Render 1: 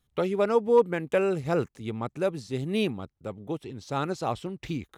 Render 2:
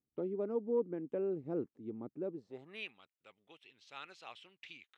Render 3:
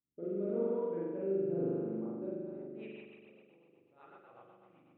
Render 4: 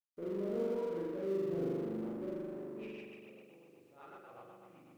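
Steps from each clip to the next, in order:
band-pass sweep 300 Hz -> 2.7 kHz, 2.32–2.89 s; trim -5 dB
level-controlled noise filter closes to 380 Hz, open at -31.5 dBFS; spring tank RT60 2 s, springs 41 ms, chirp 45 ms, DRR -9 dB; rotary cabinet horn 0.9 Hz, later 8 Hz, at 2.24 s; trim -5.5 dB
companding laws mixed up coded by mu; trim -3.5 dB

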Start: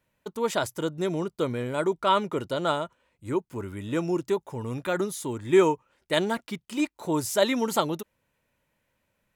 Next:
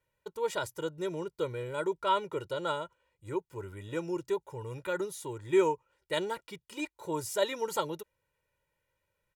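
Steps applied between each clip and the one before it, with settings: comb 2.1 ms, depth 78%; trim -9 dB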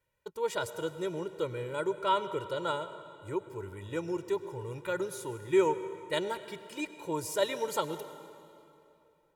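reverberation RT60 2.8 s, pre-delay 92 ms, DRR 12 dB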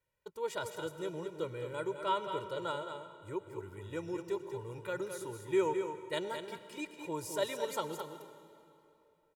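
delay 214 ms -7.5 dB; trim -5 dB

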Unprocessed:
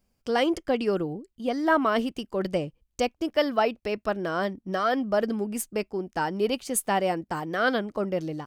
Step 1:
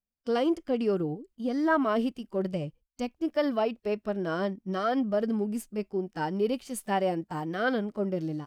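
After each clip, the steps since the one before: gate with hold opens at -52 dBFS; harmonic-percussive split percussive -13 dB; in parallel at +1 dB: peak limiter -21.5 dBFS, peak gain reduction 10.5 dB; on the sum: trim -5.5 dB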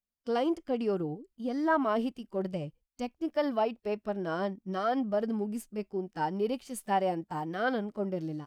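dynamic bell 840 Hz, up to +6 dB, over -43 dBFS, Q 2.7; trim -3.5 dB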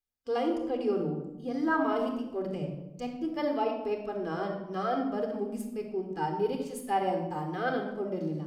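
simulated room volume 3700 m³, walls furnished, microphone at 3.9 m; trim -3.5 dB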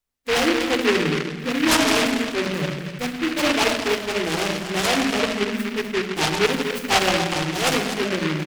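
delay 248 ms -10 dB; delay time shaken by noise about 1.9 kHz, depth 0.23 ms; trim +9 dB

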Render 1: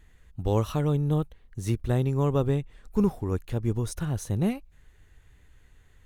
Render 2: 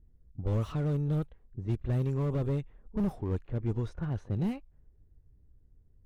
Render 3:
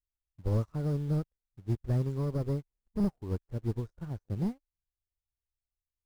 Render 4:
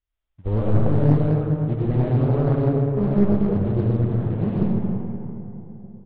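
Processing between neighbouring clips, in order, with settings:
pre-echo 32 ms -20 dB; level-controlled noise filter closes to 300 Hz, open at -19.5 dBFS; slew-rate limiter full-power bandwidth 20 Hz; trim -4 dB
touch-sensitive phaser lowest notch 170 Hz, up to 3.1 kHz, full sweep at -33 dBFS; in parallel at -9.5 dB: bit crusher 7-bit; on the sum: upward expansion 2.5:1, over -46 dBFS
reverberation RT60 3.2 s, pre-delay 50 ms, DRR -7 dB; resampled via 8 kHz; loudspeaker Doppler distortion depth 0.98 ms; trim +5 dB

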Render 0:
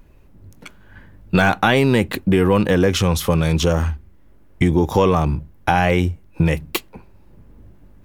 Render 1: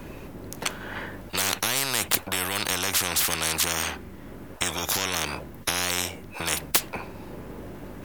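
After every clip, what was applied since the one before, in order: spectrum-flattening compressor 10:1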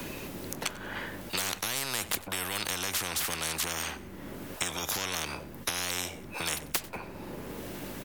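feedback delay 93 ms, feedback 28%, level -20 dB; three bands compressed up and down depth 70%; trim -6.5 dB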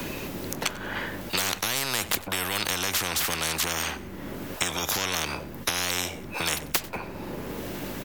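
peaking EQ 9.6 kHz -4 dB 0.52 oct; trim +5.5 dB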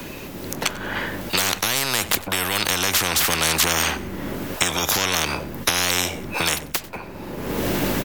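level rider gain up to 14 dB; trim -1 dB

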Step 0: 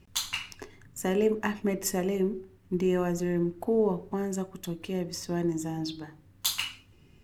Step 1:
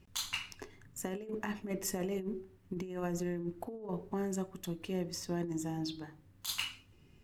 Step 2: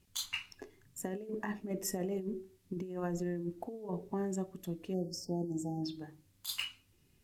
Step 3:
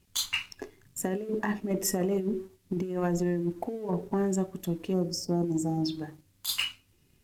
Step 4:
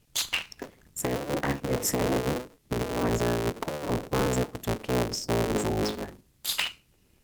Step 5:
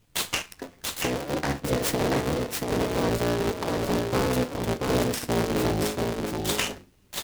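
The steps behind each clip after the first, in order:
compressor with a negative ratio -29 dBFS, ratio -0.5; trim -6.5 dB
spectral noise reduction 8 dB; band noise 1.7–15 kHz -78 dBFS; spectral selection erased 4.94–5.83 s, 880–4300 Hz
waveshaping leveller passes 1; trim +5 dB
cycle switcher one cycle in 3, inverted; trim +1.5 dB
flange 0.29 Hz, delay 9.8 ms, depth 3.9 ms, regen +69%; delay 683 ms -3.5 dB; delay time shaken by noise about 3.2 kHz, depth 0.042 ms; trim +5.5 dB

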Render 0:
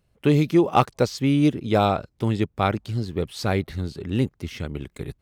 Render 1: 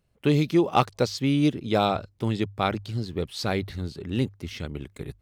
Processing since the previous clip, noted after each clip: hum notches 50/100 Hz; dynamic bell 4.1 kHz, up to +5 dB, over -46 dBFS, Q 1.2; trim -3 dB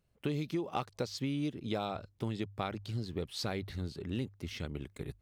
compression 5:1, threshold -27 dBFS, peak gain reduction 11.5 dB; trim -5 dB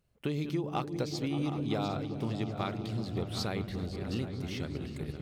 backward echo that repeats 377 ms, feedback 49%, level -11 dB; delay with an opening low-pass 192 ms, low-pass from 200 Hz, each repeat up 1 oct, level -3 dB; trim +1 dB

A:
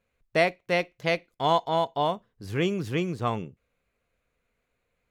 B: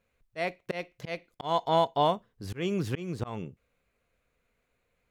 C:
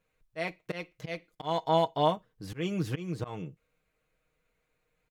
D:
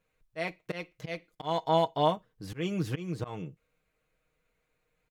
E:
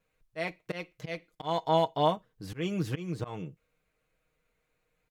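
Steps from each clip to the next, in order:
slow attack 247 ms; trim +1 dB
comb 6.4 ms, depth 58%; trim -2.5 dB
no audible change
vibrato 1.5 Hz 14 cents

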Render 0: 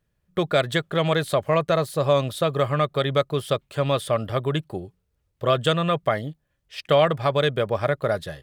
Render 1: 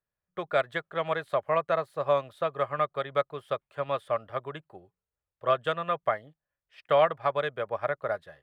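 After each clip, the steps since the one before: three-band isolator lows -13 dB, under 550 Hz, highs -16 dB, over 2.3 kHz; upward expansion 1.5:1, over -37 dBFS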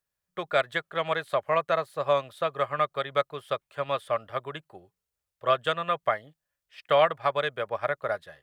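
treble shelf 2.2 kHz +8.5 dB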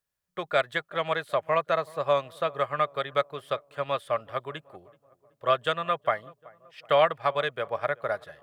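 filtered feedback delay 378 ms, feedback 57%, low-pass 1.3 kHz, level -22.5 dB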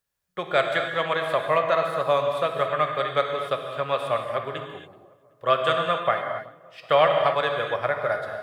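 gated-style reverb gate 300 ms flat, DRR 3 dB; trim +2.5 dB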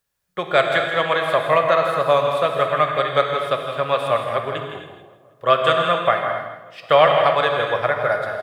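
feedback delay 163 ms, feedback 25%, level -9.5 dB; trim +5 dB

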